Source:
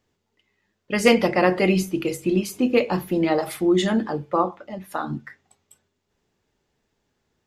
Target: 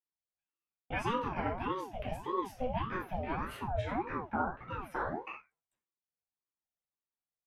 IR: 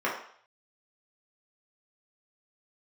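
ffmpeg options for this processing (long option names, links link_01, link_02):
-filter_complex "[0:a]asettb=1/sr,asplit=3[link_01][link_02][link_03];[link_01]atrim=end=1.174[link_04];[link_02]atrim=start=1.17:end=1.68,asetpts=PTS-STARTPTS,afade=type=in:duration=0.004:curve=qsin,afade=type=out:start_time=0.506:duration=0.004:curve=qsin,bass=frequency=250:gain=14,treble=frequency=4000:gain=2[link_05];[link_03]atrim=start=1.676[link_06];[link_04][link_05]acrossfade=duration=0.004:curve1=hsin:curve2=qsin[link_07];[link_07][link_06]acrossfade=duration=0.004:curve1=qsin:curve2=hsin,agate=range=-33dB:threshold=-38dB:ratio=3:detection=peak,acompressor=threshold=-34dB:ratio=5,aecho=1:1:95:0.0631[link_08];[1:a]atrim=start_sample=2205,atrim=end_sample=3969[link_09];[link_08][link_09]afir=irnorm=-1:irlink=0,aeval=exprs='val(0)*sin(2*PI*500*n/s+500*0.5/1.7*sin(2*PI*1.7*n/s))':channel_layout=same,volume=-7dB"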